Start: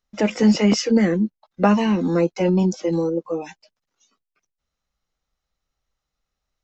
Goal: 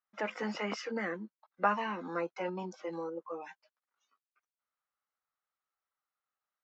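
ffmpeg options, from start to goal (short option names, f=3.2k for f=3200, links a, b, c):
-af "bandpass=f=1.3k:t=q:w=1.7:csg=0,volume=-3.5dB"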